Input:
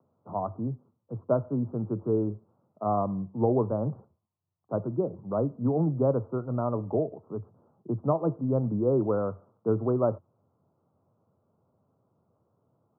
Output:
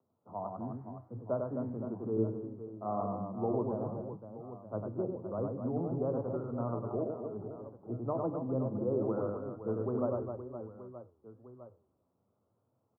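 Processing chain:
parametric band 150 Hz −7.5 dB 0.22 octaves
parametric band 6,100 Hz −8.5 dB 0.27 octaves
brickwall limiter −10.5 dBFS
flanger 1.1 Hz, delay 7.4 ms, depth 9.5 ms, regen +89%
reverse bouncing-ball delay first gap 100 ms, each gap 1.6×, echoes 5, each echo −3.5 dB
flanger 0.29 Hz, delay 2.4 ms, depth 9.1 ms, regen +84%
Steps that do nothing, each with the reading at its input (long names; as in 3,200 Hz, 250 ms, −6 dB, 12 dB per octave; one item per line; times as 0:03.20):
parametric band 6,100 Hz: nothing at its input above 1,400 Hz
brickwall limiter −10.5 dBFS: peak of its input −12.0 dBFS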